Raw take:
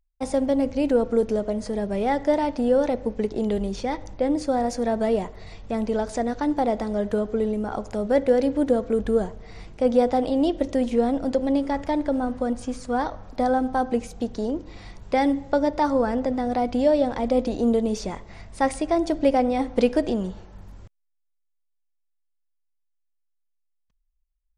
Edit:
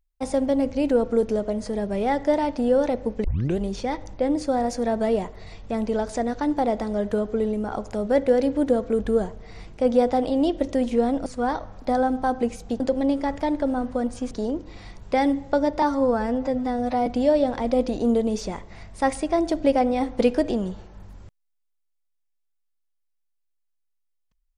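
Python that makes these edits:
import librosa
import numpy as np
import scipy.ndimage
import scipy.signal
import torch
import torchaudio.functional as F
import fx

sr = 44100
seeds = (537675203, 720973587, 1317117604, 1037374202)

y = fx.edit(x, sr, fx.tape_start(start_s=3.24, length_s=0.33),
    fx.move(start_s=11.26, length_s=1.51, to_s=14.31),
    fx.stretch_span(start_s=15.82, length_s=0.83, factor=1.5), tone=tone)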